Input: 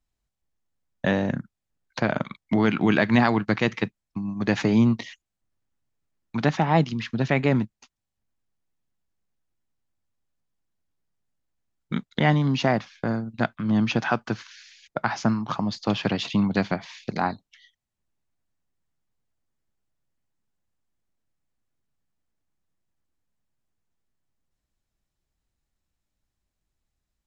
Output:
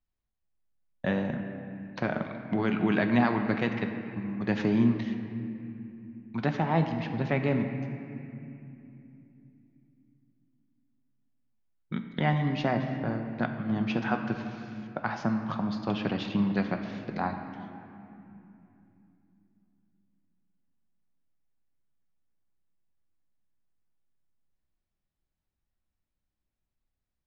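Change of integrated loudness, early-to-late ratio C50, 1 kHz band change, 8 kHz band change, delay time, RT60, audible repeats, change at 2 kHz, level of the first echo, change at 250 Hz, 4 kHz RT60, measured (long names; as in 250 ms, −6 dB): −5.5 dB, 6.5 dB, −5.0 dB, can't be measured, no echo audible, 2.9 s, no echo audible, −6.0 dB, no echo audible, −4.0 dB, 1.9 s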